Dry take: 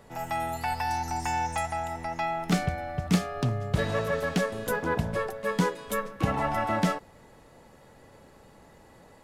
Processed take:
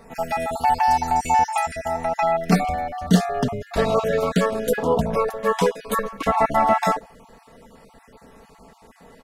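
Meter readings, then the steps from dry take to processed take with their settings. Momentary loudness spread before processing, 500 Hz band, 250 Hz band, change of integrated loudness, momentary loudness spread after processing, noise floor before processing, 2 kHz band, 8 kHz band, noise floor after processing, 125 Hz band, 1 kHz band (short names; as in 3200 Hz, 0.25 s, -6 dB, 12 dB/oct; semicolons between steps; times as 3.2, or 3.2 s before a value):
5 LU, +9.0 dB, +6.0 dB, +7.5 dB, 7 LU, -55 dBFS, +3.5 dB, +5.0 dB, -53 dBFS, +2.5 dB, +10.0 dB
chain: random spectral dropouts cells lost 26%; comb 4.4 ms, depth 61%; dynamic EQ 680 Hz, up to +6 dB, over -42 dBFS, Q 1.2; gain +5 dB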